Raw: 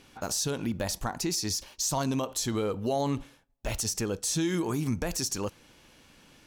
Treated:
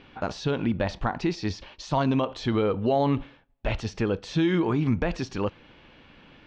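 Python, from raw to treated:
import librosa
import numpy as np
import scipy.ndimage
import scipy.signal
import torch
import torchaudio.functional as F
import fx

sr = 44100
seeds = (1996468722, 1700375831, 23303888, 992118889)

y = scipy.signal.sosfilt(scipy.signal.butter(4, 3400.0, 'lowpass', fs=sr, output='sos'), x)
y = F.gain(torch.from_numpy(y), 5.5).numpy()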